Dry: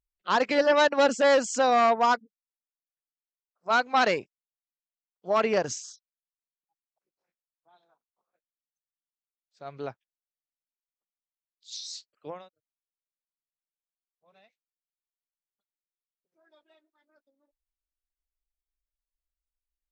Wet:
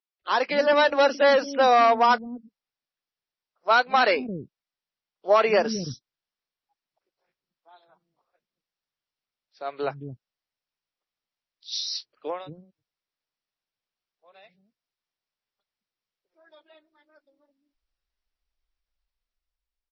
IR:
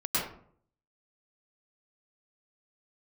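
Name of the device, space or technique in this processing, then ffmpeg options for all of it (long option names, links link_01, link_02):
low-bitrate web radio: -filter_complex "[0:a]asettb=1/sr,asplit=3[link_01][link_02][link_03];[link_01]atrim=end=11.774[link_04];[link_02]atrim=start=11.77:end=12.28,asetpts=PTS-STARTPTS,afade=type=in:duration=0.004:curve=qsin,afade=type=out:start_time=0.506:duration=0.004:curve=qsin,equalizer=frequency=320:width=0.38:gain=3[link_05];[link_03]atrim=start=12.276[link_06];[link_04][link_05]acrossfade=duration=0.004:curve1=hsin:curve2=qsin[link_07];[link_07][link_06]acrossfade=duration=0.004:curve1=qsin:curve2=hsin,acrossover=split=280[link_08][link_09];[link_08]adelay=220[link_10];[link_10][link_09]amix=inputs=2:normalize=0,dynaudnorm=framelen=260:gausssize=9:maxgain=8dB,alimiter=limit=-9.5dB:level=0:latency=1:release=347,volume=1dB" -ar 22050 -c:a libmp3lame -b:a 24k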